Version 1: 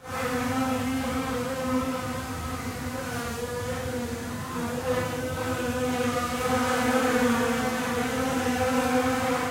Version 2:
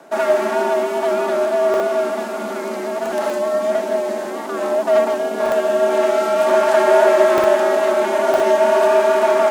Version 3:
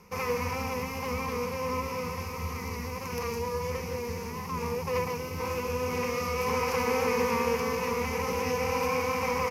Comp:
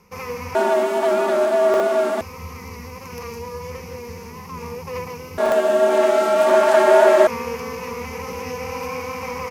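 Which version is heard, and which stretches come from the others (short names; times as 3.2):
3
0.55–2.21 from 2
5.38–7.27 from 2
not used: 1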